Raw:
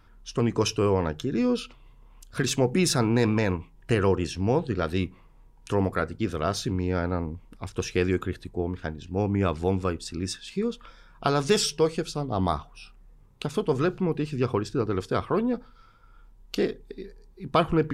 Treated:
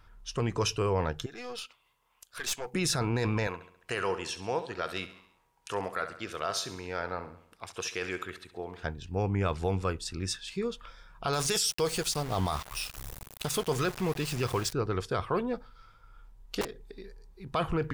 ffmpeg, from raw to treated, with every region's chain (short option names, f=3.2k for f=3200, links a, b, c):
-filter_complex "[0:a]asettb=1/sr,asplit=3[a][b][c];[a]atrim=end=1.264[d];[b]atrim=start=1.26:end=2.74,asetpts=PTS-STARTPTS,afade=t=in:d=0.004:c=qsin,afade=t=out:st=1.476:d=0.004:c=qsin,highpass=f=1.1k:p=1,highshelf=f=11k:g=7.5,aeval=exprs='(tanh(17.8*val(0)+0.6)-tanh(0.6))/17.8':c=same[e];[c]atrim=start=2.736[f];[d][e]acrossfade=d=0.004:c1=hsin:c2=qsin[g];[g][f]acrossfade=d=0.004:c1=qsin:c2=hsin,asettb=1/sr,asplit=3[h][i][j];[h]atrim=end=3.474[k];[i]atrim=start=3.47:end=8.83,asetpts=PTS-STARTPTS,afade=t=in:d=0.004:c=qsin,afade=t=out:st=5.356:d=0.004:c=qsin,highpass=f=630:p=1,aecho=1:1:68|136|204|272|340:0.211|0.11|0.0571|0.0297|0.0155,atrim=end_sample=236376[l];[j]atrim=start=8.826[m];[k][l]acrossfade=d=0.004:c1=hsin:c2=qsin[n];[n][m]acrossfade=d=0.004:c1=qsin:c2=hsin,asettb=1/sr,asplit=3[o][p][q];[o]atrim=end=11.334[r];[p]atrim=start=11.33:end=14.73,asetpts=PTS-STARTPTS,afade=t=in:d=0.004:c=qsin,afade=t=out:st=3.396:d=0.004:c=qsin,aemphasis=mode=production:type=75kf,acompressor=mode=upward:threshold=-25dB:ratio=2.5:attack=3.2:release=140:knee=2.83:detection=peak,aeval=exprs='val(0)*gte(abs(val(0)),0.0178)':c=same[s];[q]atrim=start=14.726[t];[r][s]acrossfade=d=0.004:c1=hsin:c2=qsin[u];[u][t]acrossfade=d=0.004:c1=qsin:c2=hsin,asettb=1/sr,asplit=3[v][w][x];[v]atrim=end=16.614[y];[w]atrim=start=16.61:end=17.47,asetpts=PTS-STARTPTS,afade=t=in:d=0.004:c=qsin,afade=t=out:st=0.856:d=0.004:c=qsin,acompressor=threshold=-36dB:ratio=2:attack=3.2:release=140:knee=1:detection=peak,aeval=exprs='(mod(22.4*val(0)+1,2)-1)/22.4':c=same[z];[x]atrim=start=17.466[aa];[y][z]acrossfade=d=0.004:c1=hsin:c2=qsin[ab];[ab][aa]acrossfade=d=0.004:c1=qsin:c2=hsin,equalizer=f=260:w=1.1:g=-8.5,alimiter=limit=-19dB:level=0:latency=1:release=15"